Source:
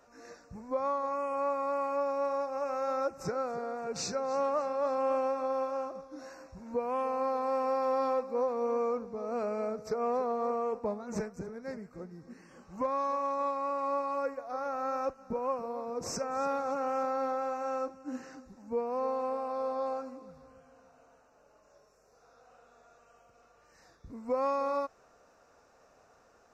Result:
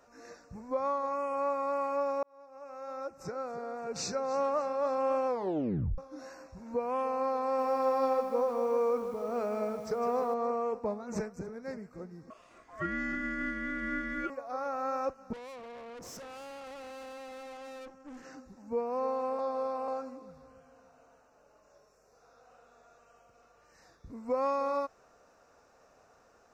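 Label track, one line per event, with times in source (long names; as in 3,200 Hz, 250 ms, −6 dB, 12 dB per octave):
2.230000	4.120000	fade in
5.270000	5.270000	tape stop 0.71 s
7.430000	10.340000	feedback echo at a low word length 155 ms, feedback 55%, word length 9 bits, level −8.5 dB
12.300000	14.300000	ring modulation 870 Hz
15.330000	18.250000	tube saturation drive 44 dB, bias 0.75
19.390000	19.880000	reverse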